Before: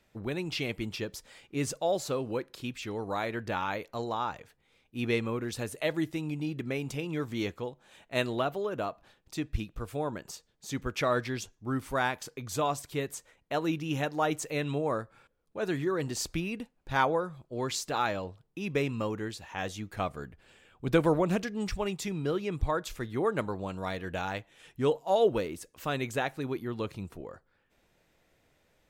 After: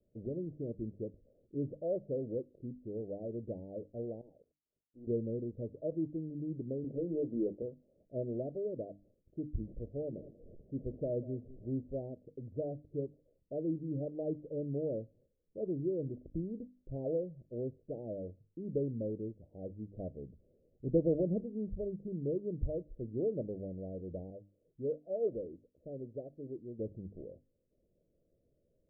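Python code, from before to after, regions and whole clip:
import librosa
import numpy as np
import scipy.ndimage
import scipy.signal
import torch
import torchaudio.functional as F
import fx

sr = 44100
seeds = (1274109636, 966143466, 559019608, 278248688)

y = fx.chain(x, sr, fx.env_phaser(low_hz=480.0, high_hz=2900.0, full_db=-39.0),
    fx.differentiator(),
    fx.leveller(passes=5), at=(4.21, 5.07))
y = fx.chain(y, sr, fx.highpass(hz=230.0, slope=12),
    fx.hum_notches(base_hz=50, count=7),
    fx.leveller(passes=2), at=(6.84, 7.62))
y = fx.chain(y, sr, fx.delta_mod(bps=64000, step_db=-40.5),
    fx.echo_single(ms=190, db=-18.0), at=(9.63, 11.78))
y = fx.chain(y, sr, fx.steep_lowpass(hz=720.0, slope=36),
    fx.low_shelf(hz=500.0, db=-8.0), at=(24.3, 26.79))
y = scipy.signal.sosfilt(scipy.signal.butter(12, 610.0, 'lowpass', fs=sr, output='sos'), y)
y = fx.hum_notches(y, sr, base_hz=50, count=6)
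y = fx.end_taper(y, sr, db_per_s=560.0)
y = F.gain(torch.from_numpy(y), -4.0).numpy()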